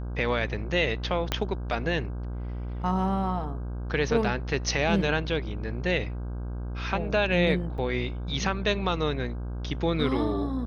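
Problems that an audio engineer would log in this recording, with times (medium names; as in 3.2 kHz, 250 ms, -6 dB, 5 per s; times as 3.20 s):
buzz 60 Hz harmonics 27 -33 dBFS
1.32 s: pop -10 dBFS
7.78 s: dropout 4 ms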